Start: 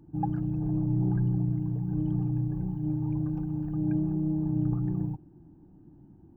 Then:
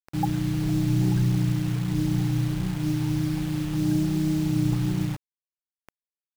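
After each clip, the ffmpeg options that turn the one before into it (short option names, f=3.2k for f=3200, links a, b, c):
-af "acrusher=bits=6:mix=0:aa=0.000001,volume=4dB"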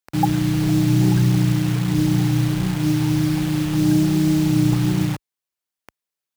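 -af "highpass=43,lowshelf=f=180:g=-4.5,volume=8.5dB"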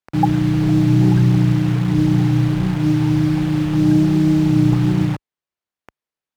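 -af "lowpass=f=2.1k:p=1,volume=3dB"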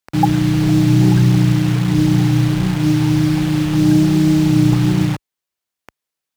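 -af "highshelf=f=3k:g=8.5,volume=1.5dB"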